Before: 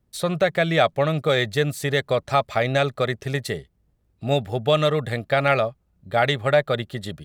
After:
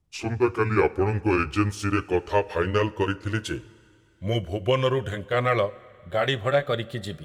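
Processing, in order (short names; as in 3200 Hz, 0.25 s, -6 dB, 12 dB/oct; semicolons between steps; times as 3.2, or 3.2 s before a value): gliding pitch shift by -8 st ending unshifted; two-slope reverb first 0.23 s, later 2.6 s, from -18 dB, DRR 13 dB; gain -1.5 dB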